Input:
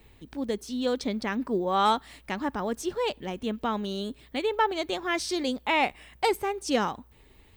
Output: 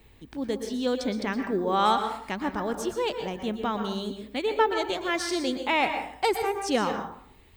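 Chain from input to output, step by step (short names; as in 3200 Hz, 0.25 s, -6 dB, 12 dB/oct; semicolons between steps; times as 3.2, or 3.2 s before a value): plate-style reverb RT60 0.59 s, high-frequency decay 0.5×, pre-delay 0.105 s, DRR 6 dB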